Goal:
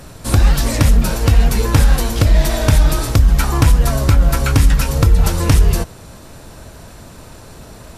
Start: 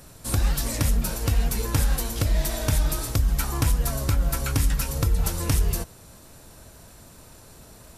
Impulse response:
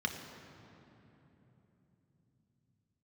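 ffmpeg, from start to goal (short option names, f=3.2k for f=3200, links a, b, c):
-af "highshelf=f=7.1k:g=-11,acontrast=70,volume=5dB"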